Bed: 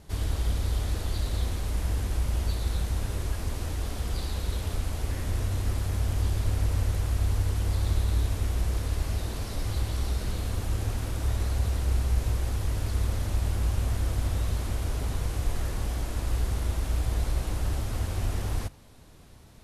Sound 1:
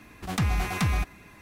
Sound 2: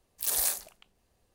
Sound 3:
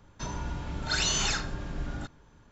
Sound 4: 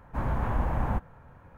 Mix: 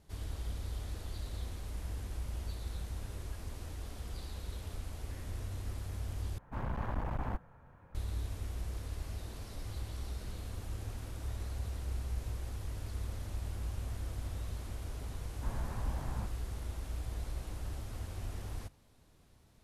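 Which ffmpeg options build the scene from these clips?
ffmpeg -i bed.wav -i cue0.wav -i cue1.wav -i cue2.wav -i cue3.wav -filter_complex "[4:a]asplit=2[link_01][link_02];[0:a]volume=-12dB[link_03];[link_01]aeval=exprs='clip(val(0),-1,0.0282)':channel_layout=same[link_04];[link_02]acrossover=split=200|3000[link_05][link_06][link_07];[link_06]acompressor=threshold=-34dB:ratio=6:attack=3.2:release=140:knee=2.83:detection=peak[link_08];[link_05][link_08][link_07]amix=inputs=3:normalize=0[link_09];[link_03]asplit=2[link_10][link_11];[link_10]atrim=end=6.384[link_12];[link_04]atrim=end=1.57,asetpts=PTS-STARTPTS,volume=-6.5dB[link_13];[link_11]atrim=start=7.946[link_14];[link_09]atrim=end=1.57,asetpts=PTS-STARTPTS,volume=-10.5dB,afade=type=in:duration=0.004:curve=hsin,afade=type=out:start_time=1.566:duration=0.004:curve=hsin,adelay=15280[link_15];[link_12][link_13]acrossfade=duration=0.004:curve1=hsin:curve2=hsin[link_16];[link_16][link_14]acrossfade=duration=0.004:curve1=hsin:curve2=hsin[link_17];[link_17][link_15]amix=inputs=2:normalize=0" out.wav

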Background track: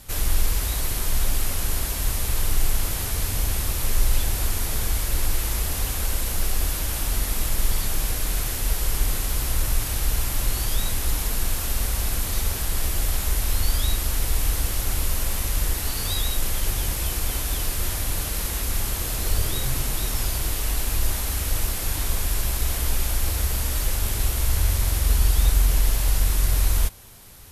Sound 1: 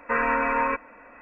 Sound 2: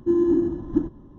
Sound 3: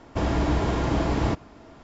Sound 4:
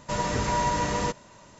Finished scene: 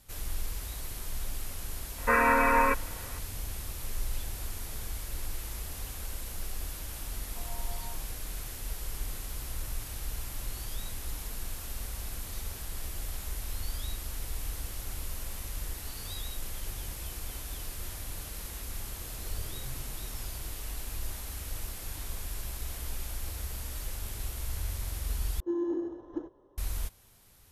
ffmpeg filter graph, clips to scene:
ffmpeg -i bed.wav -i cue0.wav -i cue1.wav -filter_complex "[1:a]asplit=2[link_01][link_02];[0:a]volume=-13.5dB[link_03];[link_02]asuperpass=centerf=760:order=4:qfactor=5.5[link_04];[2:a]lowshelf=frequency=310:width_type=q:width=3:gain=-13.5[link_05];[link_03]asplit=2[link_06][link_07];[link_06]atrim=end=25.404[link_08];[link_05]atrim=end=1.18,asetpts=PTS-STARTPTS,volume=-8.5dB[link_09];[link_07]atrim=start=26.576[link_10];[link_01]atrim=end=1.21,asetpts=PTS-STARTPTS,afade=type=in:duration=0.004:curve=hsin,afade=type=out:start_time=1.206:duration=0.004:curve=hsin,adelay=1980[link_11];[link_04]atrim=end=1.21,asetpts=PTS-STARTPTS,volume=-10.5dB,afade=type=in:duration=0.004:curve=hsin,afade=type=out:start_time=1.206:duration=0.004:curve=hsin,adelay=7260[link_12];[link_08][link_09]acrossfade=duration=0.004:curve1=hsin:curve2=hsin[link_13];[link_13][link_10]acrossfade=duration=0.004:curve1=hsin:curve2=hsin[link_14];[link_14][link_11][link_12]amix=inputs=3:normalize=0" out.wav

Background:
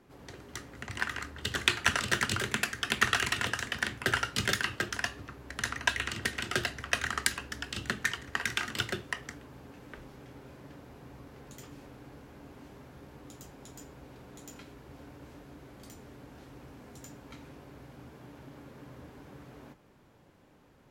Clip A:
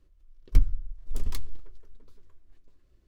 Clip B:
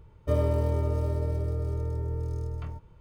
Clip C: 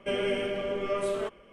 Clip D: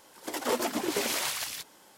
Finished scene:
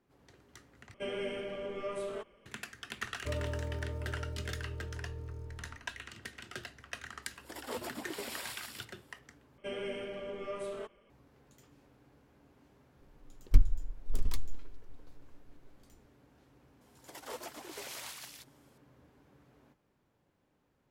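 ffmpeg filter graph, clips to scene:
ffmpeg -i bed.wav -i cue0.wav -i cue1.wav -i cue2.wav -i cue3.wav -filter_complex "[3:a]asplit=2[link_01][link_02];[4:a]asplit=2[link_03][link_04];[0:a]volume=-13.5dB[link_05];[link_03]bandreject=frequency=6200:width=5.1[link_06];[link_04]highpass=410[link_07];[link_05]asplit=3[link_08][link_09][link_10];[link_08]atrim=end=0.944[link_11];[link_01]atrim=end=1.52,asetpts=PTS-STARTPTS,volume=-8.5dB[link_12];[link_09]atrim=start=2.456:end=9.584[link_13];[link_02]atrim=end=1.52,asetpts=PTS-STARTPTS,volume=-10dB[link_14];[link_10]atrim=start=11.096[link_15];[2:a]atrim=end=3,asetpts=PTS-STARTPTS,volume=-11.5dB,afade=type=in:duration=0.004:curve=hsin,afade=type=out:start_time=2.996:duration=0.004:curve=hsin,adelay=2980[link_16];[link_06]atrim=end=1.97,asetpts=PTS-STARTPTS,volume=-11.5dB,afade=type=in:duration=0.004:curve=hsin,afade=type=out:start_time=1.966:duration=0.004:curve=hsin,adelay=318402S[link_17];[1:a]atrim=end=3.07,asetpts=PTS-STARTPTS,volume=-2dB,afade=type=in:duration=0.004:curve=hsin,afade=type=out:start_time=3.066:duration=0.004:curve=hsin,adelay=12990[link_18];[link_07]atrim=end=1.97,asetpts=PTS-STARTPTS,volume=-13.5dB,afade=type=in:duration=0.004:curve=hsin,afade=type=out:start_time=1.966:duration=0.004:curve=hsin,adelay=16810[link_19];[link_11][link_12]acrossfade=duration=0.004:curve1=hsin:curve2=hsin[link_20];[link_20][link_13]acrossfade=duration=0.004:curve1=hsin:curve2=hsin[link_21];[link_21][link_14]acrossfade=duration=0.004:curve1=hsin:curve2=hsin[link_22];[link_22][link_15]acrossfade=duration=0.004:curve1=hsin:curve2=hsin[link_23];[link_23][link_16][link_17][link_18][link_19]amix=inputs=5:normalize=0" out.wav

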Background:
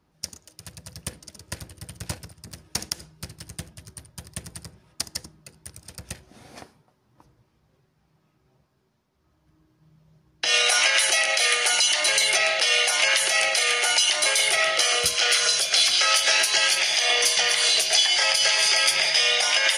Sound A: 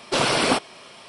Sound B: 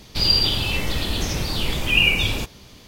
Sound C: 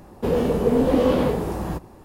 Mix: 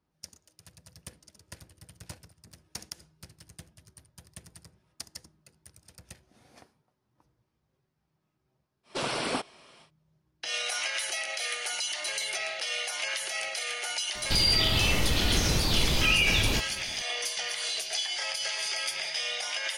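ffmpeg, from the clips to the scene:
ffmpeg -i bed.wav -i cue0.wav -i cue1.wav -filter_complex "[0:a]volume=-12dB[link_01];[2:a]alimiter=level_in=12.5dB:limit=-1dB:release=50:level=0:latency=1[link_02];[1:a]atrim=end=1.08,asetpts=PTS-STARTPTS,volume=-10.5dB,afade=type=in:duration=0.1,afade=type=out:start_time=0.98:duration=0.1,adelay=8830[link_03];[link_02]atrim=end=2.87,asetpts=PTS-STARTPTS,volume=-14dB,afade=type=in:duration=0.004:curve=hsin,afade=type=out:start_time=2.866:duration=0.004:curve=hsin,adelay=14150[link_04];[link_01][link_03][link_04]amix=inputs=3:normalize=0" out.wav

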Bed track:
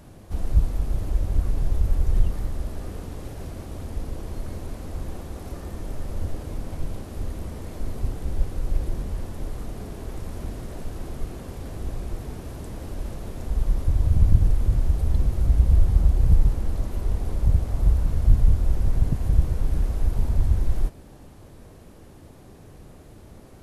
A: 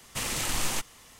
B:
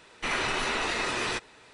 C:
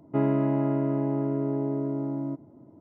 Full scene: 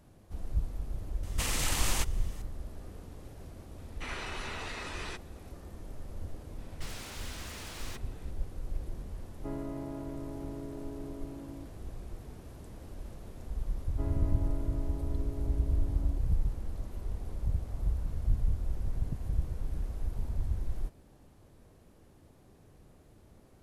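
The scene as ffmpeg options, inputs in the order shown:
ffmpeg -i bed.wav -i cue0.wav -i cue1.wav -i cue2.wav -filter_complex "[2:a]asplit=2[link_01][link_02];[3:a]asplit=2[link_03][link_04];[0:a]volume=-12dB[link_05];[link_02]aeval=exprs='0.0251*(abs(mod(val(0)/0.0251+3,4)-2)-1)':channel_layout=same[link_06];[link_03]highpass=130[link_07];[1:a]atrim=end=1.19,asetpts=PTS-STARTPTS,volume=-2dB,afade=type=in:duration=0.004:curve=hsin,afade=type=out:start_time=1.186:duration=0.004:curve=hsin,adelay=1230[link_08];[link_01]atrim=end=1.73,asetpts=PTS-STARTPTS,volume=-11.5dB,afade=type=in:duration=0.004:curve=hsin,afade=type=out:start_time=1.726:duration=0.004:curve=hsin,adelay=3780[link_09];[link_06]atrim=end=1.73,asetpts=PTS-STARTPTS,volume=-9dB,afade=type=in:duration=0.004:curve=hsin,afade=type=out:start_time=1.726:duration=0.004:curve=hsin,adelay=290178S[link_10];[link_07]atrim=end=2.8,asetpts=PTS-STARTPTS,volume=-14.5dB,afade=type=in:duration=0.004:curve=hsin,afade=type=out:start_time=2.796:duration=0.004:curve=hsin,adelay=410130S[link_11];[link_04]atrim=end=2.8,asetpts=PTS-STARTPTS,volume=-16dB,afade=type=in:duration=0.004:curve=hsin,afade=type=out:start_time=2.796:duration=0.004:curve=hsin,adelay=13840[link_12];[link_05][link_08][link_09][link_10][link_11][link_12]amix=inputs=6:normalize=0" out.wav

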